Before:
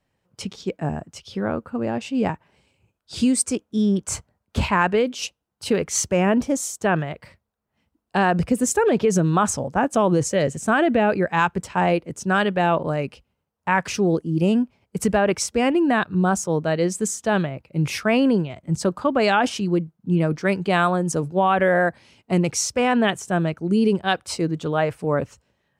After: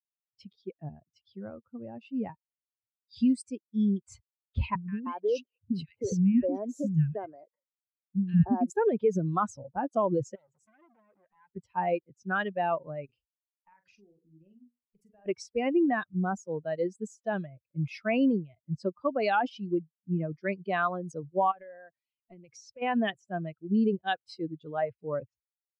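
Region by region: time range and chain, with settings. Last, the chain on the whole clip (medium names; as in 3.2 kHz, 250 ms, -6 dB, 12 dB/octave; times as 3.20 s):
4.75–8.70 s: compression 2:1, threshold -22 dBFS + peaking EQ 170 Hz +10.5 dB 2.6 oct + three bands offset in time lows, highs, mids 130/310 ms, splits 290/1600 Hz
10.35–11.50 s: compression, threshold -29 dBFS + transformer saturation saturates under 2.1 kHz
13.05–15.26 s: hum notches 60/120/180/240/300/360/420/480/540 Hz + compression, threshold -34 dBFS + doubling 44 ms -6 dB
21.51–22.82 s: high-pass 120 Hz 6 dB/octave + compression 16:1, threshold -25 dBFS
whole clip: expander on every frequency bin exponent 2; low-pass 4.5 kHz 12 dB/octave; treble shelf 3 kHz -7 dB; trim -3 dB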